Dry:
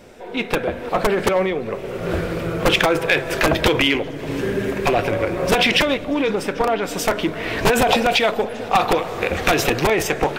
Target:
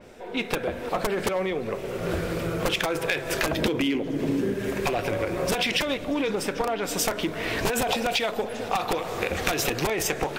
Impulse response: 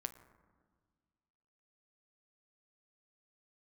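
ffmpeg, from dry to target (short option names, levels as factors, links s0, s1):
-filter_complex "[0:a]asettb=1/sr,asplit=3[s0][s1][s2];[s0]atrim=end=3.574[s3];[s1]atrim=start=3.57:end=4.54,asetpts=PTS-STARTPTS,afade=t=in:d=0.004:c=qsin,afade=t=out:st=0.966:d=0.004:c=qsin,equalizer=f=250:t=o:w=1.6:g=12.5[s4];[s2]atrim=start=4.536[s5];[s3][s4]acrossfade=d=0.004:c1=hsin:c2=qsin[s6];[s6][s5]acrossfade=d=0.004:c1=qsin:c2=hsin,acompressor=threshold=0.112:ratio=6,adynamicequalizer=threshold=0.00794:dfrequency=4200:dqfactor=0.7:tfrequency=4200:tqfactor=0.7:attack=5:release=100:ratio=0.375:range=3:mode=boostabove:tftype=highshelf,volume=0.668"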